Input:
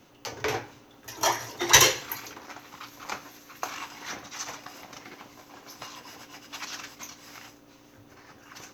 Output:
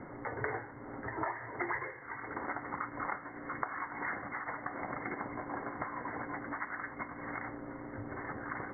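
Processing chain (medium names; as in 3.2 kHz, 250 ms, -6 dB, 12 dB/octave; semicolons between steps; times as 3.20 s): dynamic bell 1.7 kHz, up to +4 dB, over -44 dBFS, Q 1.1; compression 10:1, threshold -44 dBFS, peak gain reduction 33 dB; brick-wall FIR low-pass 2.2 kHz; trim +11 dB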